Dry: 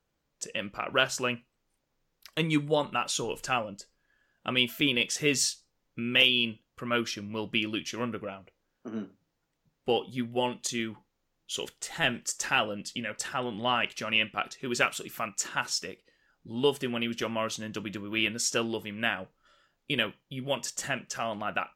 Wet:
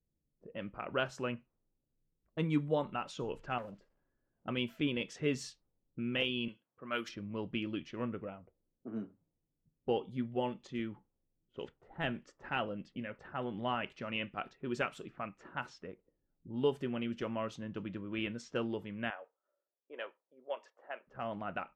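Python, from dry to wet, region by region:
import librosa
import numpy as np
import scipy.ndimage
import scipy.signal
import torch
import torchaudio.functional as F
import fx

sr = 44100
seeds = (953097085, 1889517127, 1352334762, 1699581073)

y = fx.chain(x, sr, fx.crossing_spikes(level_db=-39.0),
    fx.transformer_sat(knee_hz=1400.0), at=(3.58, 4.47))
y = fx.chain(y, sr, fx.highpass(hz=110.0, slope=12),
    fx.tilt_eq(slope=3.5), at=(6.48, 7.09))
y = fx.chain(y, sr, fx.highpass(hz=490.0, slope=24),
    fx.high_shelf(hz=2500.0, db=-9.5), at=(19.1, 21.07))
y = fx.lowpass(y, sr, hz=1200.0, slope=6)
y = fx.env_lowpass(y, sr, base_hz=340.0, full_db=-30.5)
y = fx.low_shelf(y, sr, hz=230.0, db=3.5)
y = y * 10.0 ** (-5.5 / 20.0)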